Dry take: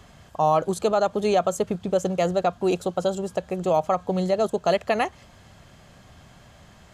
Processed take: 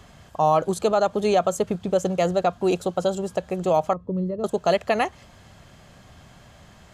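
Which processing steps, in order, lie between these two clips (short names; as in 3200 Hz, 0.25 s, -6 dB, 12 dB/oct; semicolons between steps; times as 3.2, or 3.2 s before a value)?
3.93–4.44 running mean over 57 samples; gain +1 dB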